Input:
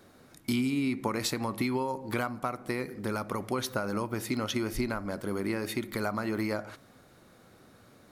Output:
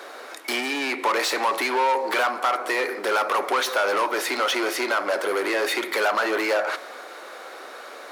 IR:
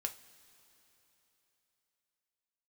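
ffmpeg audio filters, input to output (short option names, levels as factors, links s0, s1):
-filter_complex "[0:a]asplit=2[s0][s1];[1:a]atrim=start_sample=2205[s2];[s1][s2]afir=irnorm=-1:irlink=0,volume=0.335[s3];[s0][s3]amix=inputs=2:normalize=0,asplit=2[s4][s5];[s5]highpass=f=720:p=1,volume=25.1,asoftclip=type=tanh:threshold=0.251[s6];[s4][s6]amix=inputs=2:normalize=0,lowpass=f=2700:p=1,volume=0.501,highpass=f=390:w=0.5412,highpass=f=390:w=1.3066"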